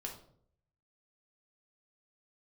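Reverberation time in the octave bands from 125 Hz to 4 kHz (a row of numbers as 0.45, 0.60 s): 1.0, 0.70, 0.70, 0.55, 0.40, 0.40 s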